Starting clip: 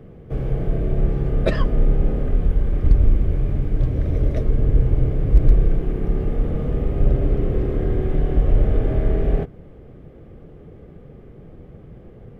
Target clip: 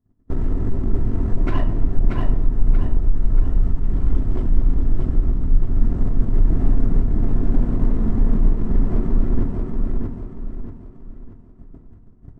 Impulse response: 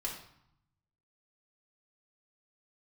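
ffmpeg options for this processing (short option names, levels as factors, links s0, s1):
-filter_complex "[0:a]agate=range=0.00631:threshold=0.0158:ratio=16:detection=peak,asplit=2[s0][s1];[s1]alimiter=limit=0.188:level=0:latency=1:release=140,volume=0.794[s2];[s0][s2]amix=inputs=2:normalize=0,acompressor=threshold=0.0794:ratio=10,asetrate=25476,aresample=44100,atempo=1.73107,volume=18.8,asoftclip=hard,volume=0.0531,aecho=1:1:633|1266|1899|2532|3165:0.708|0.276|0.108|0.042|0.0164,asplit=2[s3][s4];[1:a]atrim=start_sample=2205[s5];[s4][s5]afir=irnorm=-1:irlink=0,volume=0.794[s6];[s3][s6]amix=inputs=2:normalize=0,volume=1.68"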